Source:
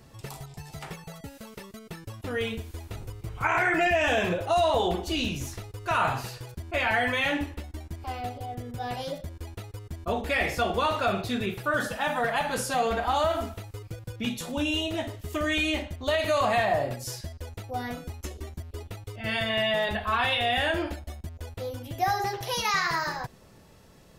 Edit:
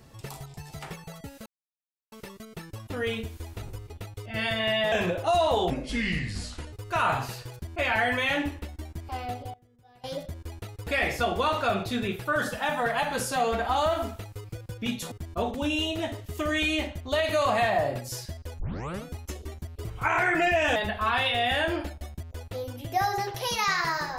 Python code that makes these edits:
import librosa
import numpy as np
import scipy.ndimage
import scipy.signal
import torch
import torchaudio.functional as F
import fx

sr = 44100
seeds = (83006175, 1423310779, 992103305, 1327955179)

y = fx.edit(x, sr, fx.insert_silence(at_s=1.46, length_s=0.66),
    fx.swap(start_s=3.24, length_s=0.91, other_s=18.8, other_length_s=1.02),
    fx.speed_span(start_s=4.93, length_s=0.75, speed=0.73),
    fx.fade_down_up(start_s=8.28, length_s=0.92, db=-24.0, fade_s=0.21, curve='log'),
    fx.move(start_s=9.82, length_s=0.43, to_s=14.5),
    fx.tape_start(start_s=17.55, length_s=0.45), tone=tone)